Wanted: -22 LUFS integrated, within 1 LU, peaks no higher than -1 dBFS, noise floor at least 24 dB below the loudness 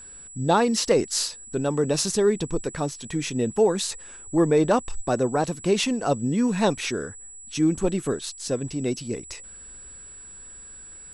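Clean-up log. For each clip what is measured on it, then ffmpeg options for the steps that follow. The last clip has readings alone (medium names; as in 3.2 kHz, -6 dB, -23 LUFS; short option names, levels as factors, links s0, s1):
steady tone 7.8 kHz; tone level -41 dBFS; loudness -24.5 LUFS; peak level -7.0 dBFS; loudness target -22.0 LUFS
-> -af "bandreject=f=7800:w=30"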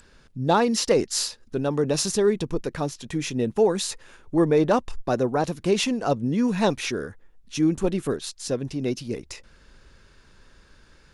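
steady tone not found; loudness -24.5 LUFS; peak level -7.0 dBFS; loudness target -22.0 LUFS
-> -af "volume=1.33"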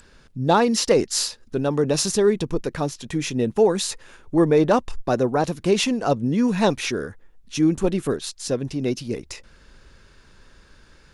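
loudness -22.0 LUFS; peak level -4.5 dBFS; noise floor -53 dBFS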